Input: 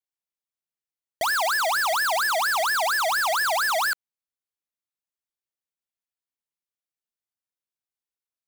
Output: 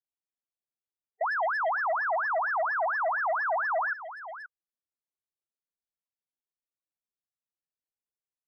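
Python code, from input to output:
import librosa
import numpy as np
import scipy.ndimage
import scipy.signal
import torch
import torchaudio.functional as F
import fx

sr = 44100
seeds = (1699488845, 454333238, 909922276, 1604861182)

p1 = fx.lowpass(x, sr, hz=1400.0, slope=6)
p2 = p1 + fx.echo_single(p1, sr, ms=528, db=-13.0, dry=0)
p3 = fx.spec_topn(p2, sr, count=16)
y = p3 * 10.0 ** (-1.5 / 20.0)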